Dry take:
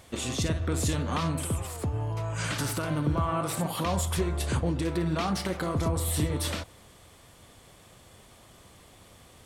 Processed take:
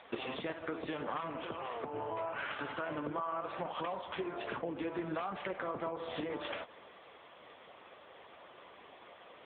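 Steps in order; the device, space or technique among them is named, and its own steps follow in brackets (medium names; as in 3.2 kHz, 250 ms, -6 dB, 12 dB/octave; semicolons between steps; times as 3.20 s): voicemail (band-pass 420–2900 Hz; compression 10:1, threshold -40 dBFS, peak gain reduction 14 dB; trim +7 dB; AMR-NB 6.7 kbps 8 kHz)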